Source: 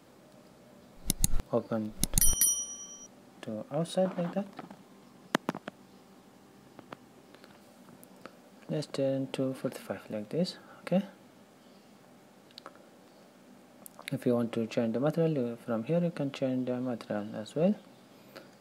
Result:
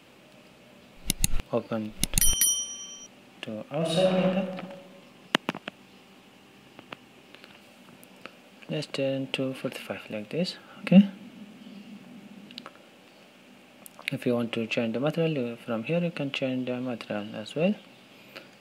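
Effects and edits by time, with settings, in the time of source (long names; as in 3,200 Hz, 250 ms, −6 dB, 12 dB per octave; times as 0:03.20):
0:03.77–0:04.20: thrown reverb, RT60 1.5 s, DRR −3.5 dB
0:10.76–0:12.66: parametric band 210 Hz +15 dB
whole clip: parametric band 2,700 Hz +14 dB 0.74 octaves; level +1.5 dB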